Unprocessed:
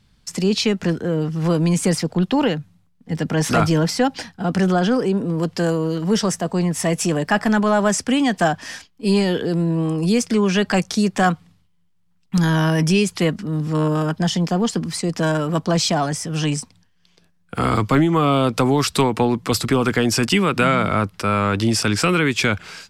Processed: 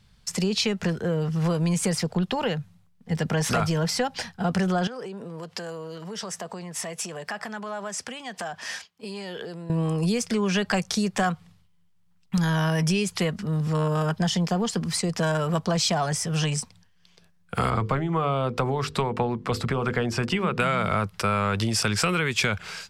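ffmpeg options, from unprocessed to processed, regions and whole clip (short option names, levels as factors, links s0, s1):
-filter_complex "[0:a]asettb=1/sr,asplit=3[s0][s1][s2];[s0]atrim=end=4.874[s3];[s1]atrim=start=4.87:end=9.7,asetpts=PTS-STARTPTS,afade=t=in:d=0.004:c=qsin,afade=t=out:st=4.826:d=0.004:c=qsin,highshelf=f=11000:g=-5.5,acompressor=threshold=0.0501:ratio=12:attack=3.2:release=140:knee=1:detection=peak,highpass=f=360:p=1[s4];[s2]atrim=start=9.696[s5];[s3][s4]acrossfade=d=0.004:c1=hsin:c2=qsin[s6];[s6][s5]acrossfade=d=0.004:c1=qsin:c2=hsin,asettb=1/sr,asplit=3[s7][s8][s9];[s7]atrim=end=17.704[s10];[s8]atrim=start=17.7:end=20.6,asetpts=PTS-STARTPTS,afade=t=in:d=0.004:c=qsin,afade=t=out:st=2.896:d=0.004:c=qsin,lowpass=f=1600:p=1,bandreject=f=50:t=h:w=6,bandreject=f=100:t=h:w=6,bandreject=f=150:t=h:w=6,bandreject=f=200:t=h:w=6,bandreject=f=250:t=h:w=6,bandreject=f=300:t=h:w=6,bandreject=f=350:t=h:w=6,bandreject=f=400:t=h:w=6,bandreject=f=450:t=h:w=6,bandreject=f=500:t=h:w=6[s11];[s9]atrim=start=20.596[s12];[s10][s11]acrossfade=d=0.004:c1=hsin:c2=qsin[s13];[s13][s12]acrossfade=d=0.004:c1=qsin:c2=hsin,acompressor=threshold=0.112:ratio=6,equalizer=f=290:w=4:g=-14"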